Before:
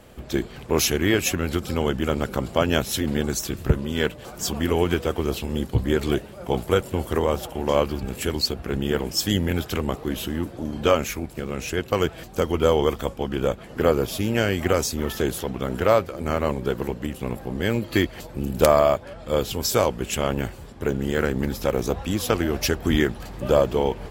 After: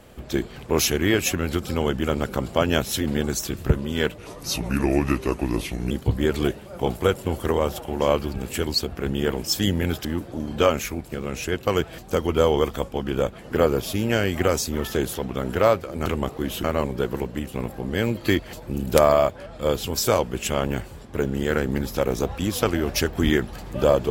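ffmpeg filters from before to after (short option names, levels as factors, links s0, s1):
-filter_complex "[0:a]asplit=6[s0][s1][s2][s3][s4][s5];[s0]atrim=end=4.184[s6];[s1]atrim=start=4.18:end=5.58,asetpts=PTS-STARTPTS,asetrate=35721,aresample=44100,atrim=end_sample=76222,asetpts=PTS-STARTPTS[s7];[s2]atrim=start=5.576:end=9.722[s8];[s3]atrim=start=10.298:end=16.312[s9];[s4]atrim=start=9.718:end=10.302[s10];[s5]atrim=start=16.308[s11];[s6][s7]acrossfade=d=0.004:c1=hsin:c2=hsin[s12];[s12][s8]acrossfade=d=0.004:c1=hsin:c2=hsin[s13];[s13][s9]acrossfade=d=0.004:c1=hsin:c2=hsin[s14];[s14][s10]acrossfade=d=0.004:c1=hsin:c2=hsin[s15];[s15][s11]acrossfade=d=0.004:c1=hsin:c2=hsin"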